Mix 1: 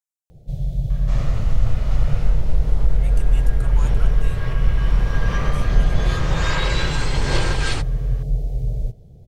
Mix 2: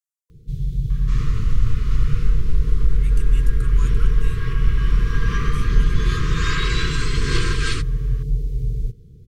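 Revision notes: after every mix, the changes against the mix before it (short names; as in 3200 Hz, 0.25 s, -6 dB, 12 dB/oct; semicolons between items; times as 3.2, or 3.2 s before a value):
master: add brick-wall FIR band-stop 490–1000 Hz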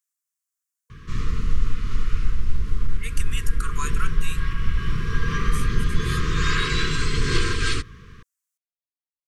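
speech +10.0 dB; first sound: muted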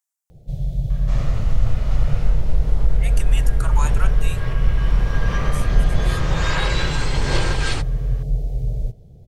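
first sound: unmuted; master: remove brick-wall FIR band-stop 490–1000 Hz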